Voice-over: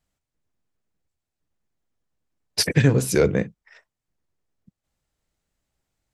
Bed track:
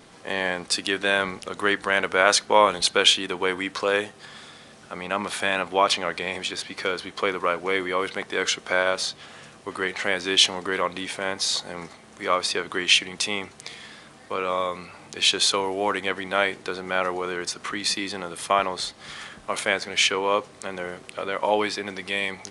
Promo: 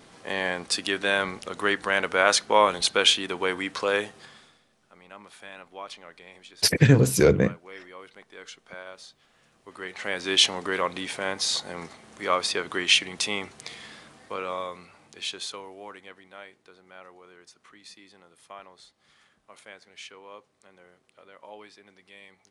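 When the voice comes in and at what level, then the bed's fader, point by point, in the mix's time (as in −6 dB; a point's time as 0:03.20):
4.05 s, +0.5 dB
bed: 0:04.18 −2 dB
0:04.68 −19.5 dB
0:09.33 −19.5 dB
0:10.33 −1.5 dB
0:13.96 −1.5 dB
0:16.46 −23 dB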